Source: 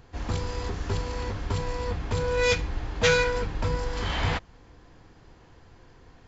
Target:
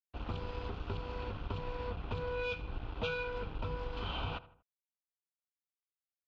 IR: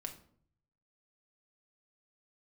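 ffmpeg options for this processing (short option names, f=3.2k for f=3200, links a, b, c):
-filter_complex "[0:a]asuperstop=centerf=1900:order=20:qfactor=2.4,aeval=exprs='sgn(val(0))*max(abs(val(0))-0.00944,0)':c=same,lowpass=f=3.1k:w=0.5412,lowpass=f=3.1k:w=1.3066,highshelf=f=2.2k:g=8,asplit=2[a][b];[b]adelay=79,lowpass=f=2.1k:p=1,volume=-19.5dB,asplit=2[c][d];[d]adelay=79,lowpass=f=2.1k:p=1,volume=0.42,asplit=2[e][f];[f]adelay=79,lowpass=f=2.1k:p=1,volume=0.42[g];[c][e][g]amix=inputs=3:normalize=0[h];[a][h]amix=inputs=2:normalize=0,acompressor=threshold=-28dB:ratio=6,volume=-5.5dB"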